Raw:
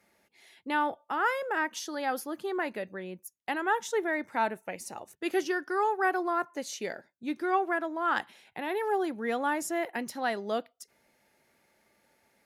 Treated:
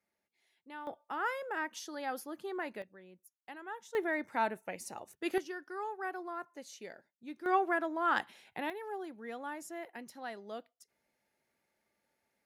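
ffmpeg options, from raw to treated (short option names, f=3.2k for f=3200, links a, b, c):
-af "asetnsamples=n=441:p=0,asendcmd='0.87 volume volume -7dB;2.82 volume volume -16dB;3.95 volume volume -3.5dB;5.38 volume volume -12dB;7.46 volume volume -2dB;8.7 volume volume -12.5dB',volume=-18dB"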